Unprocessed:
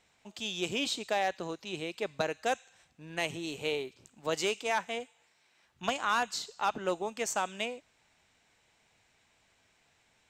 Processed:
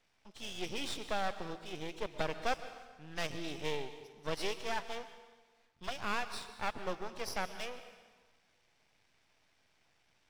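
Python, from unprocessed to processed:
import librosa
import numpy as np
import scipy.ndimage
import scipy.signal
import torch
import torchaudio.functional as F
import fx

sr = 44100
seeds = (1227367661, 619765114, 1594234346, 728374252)

y = fx.freq_compress(x, sr, knee_hz=3100.0, ratio=1.5)
y = np.maximum(y, 0.0)
y = fx.rev_plate(y, sr, seeds[0], rt60_s=1.4, hf_ratio=0.9, predelay_ms=110, drr_db=11.5)
y = fx.rider(y, sr, range_db=5, speed_s=2.0)
y = y * librosa.db_to_amplitude(-1.0)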